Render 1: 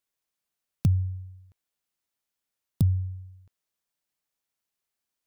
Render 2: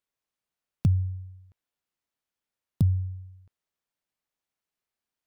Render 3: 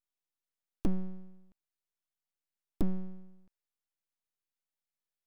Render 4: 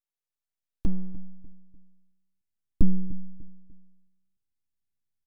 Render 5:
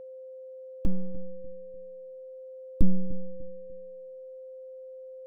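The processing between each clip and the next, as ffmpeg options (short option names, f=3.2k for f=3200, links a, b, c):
-af "highshelf=f=4.4k:g=-8.5"
-af "aeval=exprs='abs(val(0))':c=same,volume=-4.5dB"
-filter_complex "[0:a]asplit=2[a][b];[b]adelay=297,lowpass=f=1.6k:p=1,volume=-17dB,asplit=2[c][d];[d]adelay=297,lowpass=f=1.6k:p=1,volume=0.37,asplit=2[e][f];[f]adelay=297,lowpass=f=1.6k:p=1,volume=0.37[g];[a][c][e][g]amix=inputs=4:normalize=0,asubboost=boost=11.5:cutoff=200,volume=-4.5dB"
-af "aeval=exprs='val(0)+0.01*sin(2*PI*520*n/s)':c=same,volume=-1dB"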